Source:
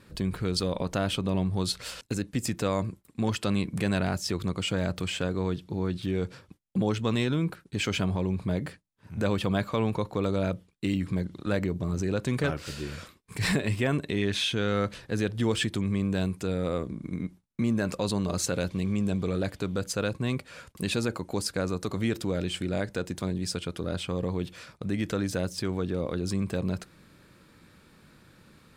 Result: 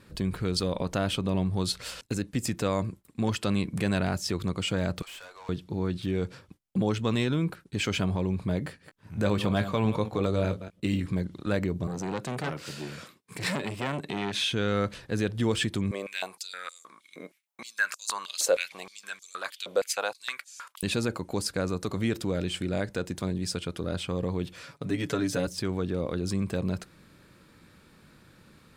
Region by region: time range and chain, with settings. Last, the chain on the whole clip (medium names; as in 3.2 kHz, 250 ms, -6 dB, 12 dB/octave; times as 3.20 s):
5.02–5.49 s: high-pass 730 Hz 24 dB/octave + valve stage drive 42 dB, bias 0.25
8.66–11.06 s: chunks repeated in reverse 119 ms, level -11 dB + doubling 19 ms -10.5 dB
11.87–14.41 s: high-pass 120 Hz 24 dB/octave + transformer saturation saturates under 1.4 kHz
15.91–20.83 s: treble shelf 11 kHz +8 dB + step-sequenced high-pass 6.4 Hz 550–6400 Hz
24.63–25.47 s: high-pass 110 Hz + comb 7.1 ms, depth 77%
whole clip: none